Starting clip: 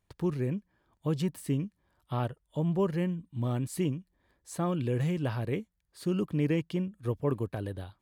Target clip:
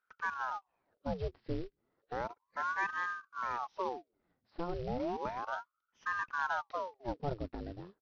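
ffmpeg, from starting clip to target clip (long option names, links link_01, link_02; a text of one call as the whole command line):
ffmpeg -i in.wav -af "highshelf=frequency=2200:gain=-12,aresample=11025,acrusher=bits=5:mode=log:mix=0:aa=0.000001,aresample=44100,aeval=exprs='val(0)*sin(2*PI*790*n/s+790*0.8/0.33*sin(2*PI*0.33*n/s))':channel_layout=same,volume=-4dB" out.wav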